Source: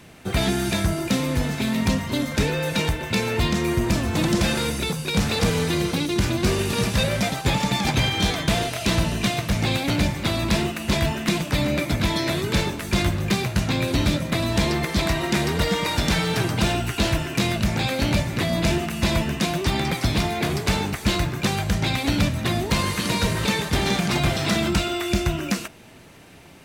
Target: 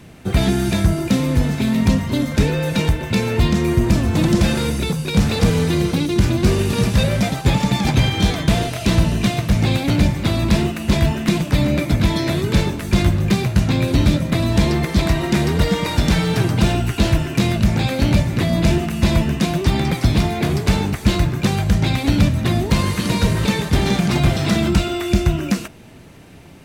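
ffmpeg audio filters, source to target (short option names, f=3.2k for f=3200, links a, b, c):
-af "lowshelf=f=390:g=8"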